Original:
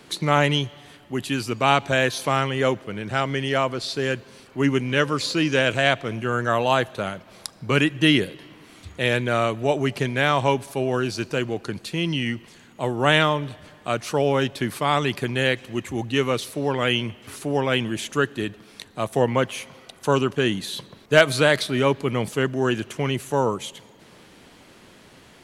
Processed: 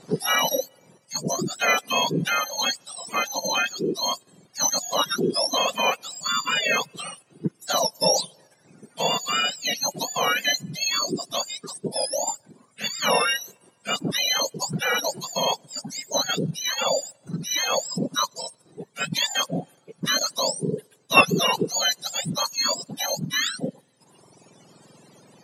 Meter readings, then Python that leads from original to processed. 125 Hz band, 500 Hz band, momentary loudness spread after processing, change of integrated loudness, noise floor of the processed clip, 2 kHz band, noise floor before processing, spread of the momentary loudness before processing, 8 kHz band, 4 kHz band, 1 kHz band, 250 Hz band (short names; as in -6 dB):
-9.0 dB, -6.0 dB, 11 LU, -1.0 dB, -61 dBFS, -2.0 dB, -50 dBFS, 12 LU, +11.5 dB, +4.0 dB, -1.5 dB, -7.0 dB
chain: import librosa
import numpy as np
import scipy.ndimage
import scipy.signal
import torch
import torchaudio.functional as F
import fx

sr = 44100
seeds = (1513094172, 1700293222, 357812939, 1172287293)

p1 = fx.octave_mirror(x, sr, pivot_hz=1300.0)
p2 = fx.dereverb_blind(p1, sr, rt60_s=1.8)
p3 = fx.level_steps(p2, sr, step_db=15)
p4 = p2 + (p3 * librosa.db_to_amplitude(1.0))
p5 = scipy.signal.sosfilt(scipy.signal.butter(4, 10000.0, 'lowpass', fs=sr, output='sos'), p4)
p6 = fx.high_shelf(p5, sr, hz=5800.0, db=4.5)
y = p6 * librosa.db_to_amplitude(-3.0)